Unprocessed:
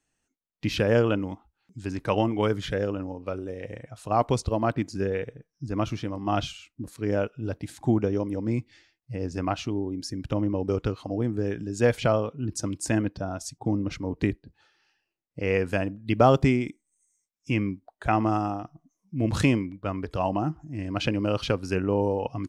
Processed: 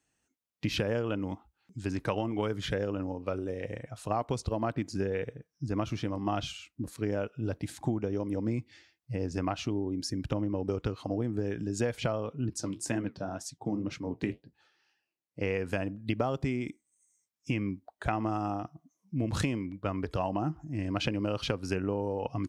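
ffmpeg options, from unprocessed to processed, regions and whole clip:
-filter_complex "[0:a]asettb=1/sr,asplit=3[a][b][c];[a]atrim=end=12.494[d];[b]atrim=start=12.49:end=15.41,asetpts=PTS-STARTPTS,afade=t=in:d=0.004:c=qsin,afade=t=out:st=2.916:d=0.004:c=qsin,highpass=110,flanger=delay=5.8:depth=9.6:regen=-59:speed=2:shape=triangular[e];[c]atrim=start=15.406[f];[d][e]acrossfade=d=0.004:c1=hsin:c2=qsin[g];[g][f]acrossfade=d=0.004:c1=qsin:c2=hsin,highpass=41,acompressor=threshold=-26dB:ratio=12"

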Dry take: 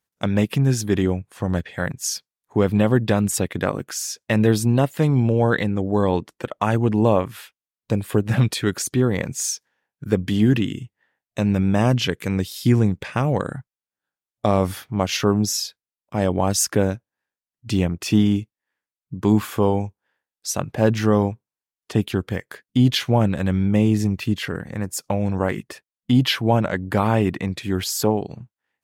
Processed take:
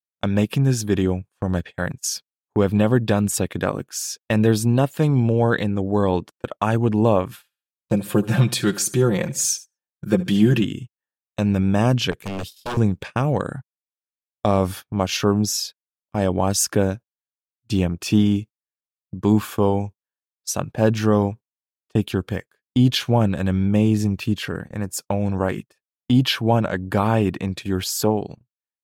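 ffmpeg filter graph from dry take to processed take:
-filter_complex "[0:a]asettb=1/sr,asplit=3[a][b][c];[a]atrim=end=7.314[d];[b]atrim=start=7.31:end=10.64,asetpts=PTS-STARTPTS,afade=t=in:d=0.004:c=qsin,afade=t=out:st=3.326:d=0.004:c=qsin,highshelf=f=5.1k:g=2.5,aecho=1:1:5.7:0.72,atrim=end_sample=146853,aecho=1:1:72|144|216:0.119|0.0464|0.0181,atrim=end_sample=146853[e];[c]atrim=start=10.636[f];[d][e]acrossfade=d=0.004:c1=hsin:c2=qsin[g];[g][f]acrossfade=d=0.004:c1=qsin:c2=hsin,asettb=1/sr,asplit=3[h][i][j];[h]atrim=end=12.114[k];[i]atrim=start=12.11:end=12.77,asetpts=PTS-STARTPTS,afade=t=in:d=0.004:c=qsin,afade=t=out:st=0.656:d=0.004:c=qsin,adynamicequalizer=threshold=0.00447:dfrequency=7600:dqfactor=1.1:tfrequency=7600:tqfactor=1.1:attack=5:release=100:ratio=0.375:range=2:mode=cutabove:tftype=bell,aeval=exprs='0.0841*(abs(mod(val(0)/0.0841+3,4)-2)-1)':c=same[l];[j]atrim=start=12.766[m];[k][l]acrossfade=d=0.004:c1=hsin:c2=qsin[n];[n][m]acrossfade=d=0.004:c1=qsin:c2=hsin,bandreject=f=2k:w=8.6,agate=range=-26dB:threshold=-32dB:ratio=16:detection=peak"

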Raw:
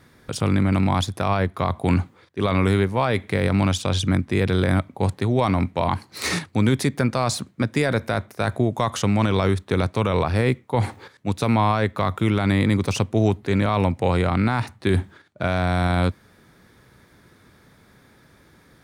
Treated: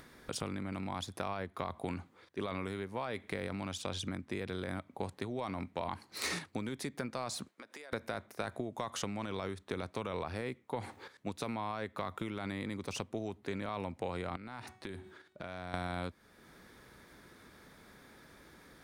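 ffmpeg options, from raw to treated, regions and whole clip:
-filter_complex "[0:a]asettb=1/sr,asplit=3[a][b][c];[a]atrim=end=7.484[d];[b]atrim=start=7.48:end=7.93,asetpts=PTS-STARTPTS,afade=t=in:d=0.004:c=qsin,afade=t=out:st=0.446:d=0.004:c=qsin,highpass=500,acompressor=threshold=-38dB:ratio=20:attack=3.2:release=140:knee=1:detection=peak[e];[c]atrim=start=7.926[f];[d][e]acrossfade=d=0.004:c1=hsin:c2=qsin[g];[g][f]acrossfade=d=0.004:c1=qsin:c2=hsin,asettb=1/sr,asplit=3[h][i][j];[h]atrim=end=14.364[k];[i]atrim=start=14.36:end=15.74,asetpts=PTS-STARTPTS,afade=t=in:d=0.004:c=qsin,afade=t=out:st=1.376:d=0.004:c=qsin,bandreject=f=372.8:t=h:w=4,bandreject=f=745.6:t=h:w=4,bandreject=f=1.1184k:t=h:w=4,bandreject=f=1.4912k:t=h:w=4,bandreject=f=1.864k:t=h:w=4,bandreject=f=2.2368k:t=h:w=4,bandreject=f=2.6096k:t=h:w=4,bandreject=f=2.9824k:t=h:w=4,bandreject=f=3.3552k:t=h:w=4,bandreject=f=3.728k:t=h:w=4,bandreject=f=4.1008k:t=h:w=4,bandreject=f=4.4736k:t=h:w=4,bandreject=f=4.8464k:t=h:w=4,bandreject=f=5.2192k:t=h:w=4,bandreject=f=5.592k:t=h:w=4,bandreject=f=5.9648k:t=h:w=4,bandreject=f=6.3376k:t=h:w=4,bandreject=f=6.7104k:t=h:w=4,bandreject=f=7.0832k:t=h:w=4,bandreject=f=7.456k:t=h:w=4,bandreject=f=7.8288k:t=h:w=4,bandreject=f=8.2016k:t=h:w=4,bandreject=f=8.5744k:t=h:w=4,bandreject=f=8.9472k:t=h:w=4,bandreject=f=9.32k:t=h:w=4,acompressor=threshold=-30dB:ratio=10:attack=3.2:release=140:knee=1:detection=peak[l];[j]atrim=start=15.736[m];[k][l]acrossfade=d=0.004:c1=hsin:c2=qsin[n];[n][m]acrossfade=d=0.004:c1=qsin:c2=hsin,acompressor=threshold=-25dB:ratio=10,equalizer=f=110:t=o:w=1.3:g=-8.5,acompressor=mode=upward:threshold=-43dB:ratio=2.5,volume=-7dB"

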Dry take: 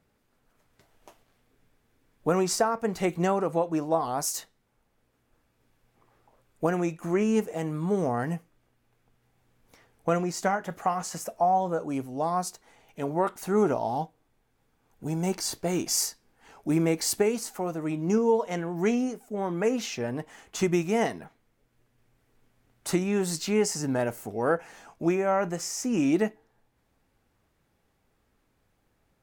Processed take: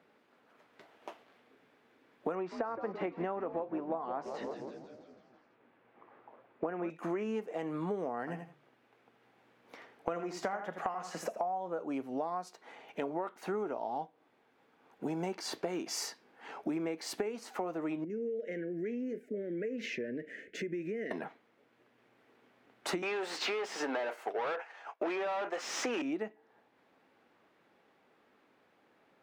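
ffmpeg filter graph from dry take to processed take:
-filter_complex "[0:a]asettb=1/sr,asplit=3[a][b][c];[a]atrim=end=2.354[d];[b]atrim=start=2.35:end=6.9,asetpts=PTS-STARTPTS,afade=t=in:d=0.004:c=qsin,afade=t=out:st=4.546:d=0.004:c=qsin,lowpass=2.4k,asplit=8[e][f][g][h][i][j][k][l];[f]adelay=166,afreqshift=-130,volume=-12.5dB[m];[g]adelay=332,afreqshift=-260,volume=-16.8dB[n];[h]adelay=498,afreqshift=-390,volume=-21.1dB[o];[i]adelay=664,afreqshift=-520,volume=-25.4dB[p];[j]adelay=830,afreqshift=-650,volume=-29.7dB[q];[k]adelay=996,afreqshift=-780,volume=-34dB[r];[l]adelay=1162,afreqshift=-910,volume=-38.3dB[s];[e][m][n][o][p][q][r][s]amix=inputs=8:normalize=0,atrim=end_sample=200655[t];[c]atrim=start=6.896[u];[d][t]acrossfade=d=0.004:c1=hsin:c2=qsin[v];[v][u]acrossfade=d=0.004:c1=qsin:c2=hsin,asettb=1/sr,asplit=3[w][x][y];[w]atrim=end=8.194[z];[x]atrim=start=8.19:end=11.42,asetpts=PTS-STARTPTS,afade=t=in:d=0.004:c=qsin,afade=t=out:st=3.226:d=0.004:c=qsin,bandreject=f=48.86:t=h:w=4,bandreject=f=97.72:t=h:w=4,bandreject=f=146.58:t=h:w=4,aecho=1:1:82|164:0.299|0.0478,atrim=end_sample=142443[aa];[y]atrim=start=11.416[ab];[z][aa]acrossfade=d=0.004:c1=hsin:c2=qsin[ac];[ac][ab]acrossfade=d=0.004:c1=qsin:c2=hsin,asettb=1/sr,asplit=3[ad][ae][af];[ad]atrim=end=18.044[ag];[ae]atrim=start=18.04:end=21.11,asetpts=PTS-STARTPTS,afade=t=in:d=0.004:c=qsin,afade=t=out:st=3.066:d=0.004:c=qsin,highshelf=f=2.4k:t=q:w=1.5:g=-10,acompressor=threshold=-36dB:ratio=6:attack=3.2:release=140:knee=1:detection=peak,asuperstop=centerf=980:order=8:qfactor=0.81[ah];[af]atrim=start=21.106[ai];[ag][ah]acrossfade=d=0.004:c1=hsin:c2=qsin[aj];[aj][ai]acrossfade=d=0.004:c1=qsin:c2=hsin,asettb=1/sr,asplit=3[ak][al][am];[ak]atrim=end=23.024[an];[al]atrim=start=23.02:end=26.02,asetpts=PTS-STARTPTS,afade=t=in:d=0.004:c=qsin,afade=t=out:st=2.996:d=0.004:c=qsin,highpass=430,agate=range=-33dB:threshold=-39dB:ratio=3:release=100:detection=peak,asplit=2[ao][ap];[ap]highpass=f=720:p=1,volume=28dB,asoftclip=type=tanh:threshold=-13.5dB[aq];[ao][aq]amix=inputs=2:normalize=0,lowpass=f=3.4k:p=1,volume=-6dB[ar];[am]atrim=start=26.016[as];[an][ar]acrossfade=d=0.004:c1=hsin:c2=qsin[at];[at][as]acrossfade=d=0.004:c1=qsin:c2=hsin,highpass=77,acrossover=split=220 4000:gain=0.0631 1 0.126[au][av][aw];[au][av][aw]amix=inputs=3:normalize=0,acompressor=threshold=-40dB:ratio=10,volume=7dB"

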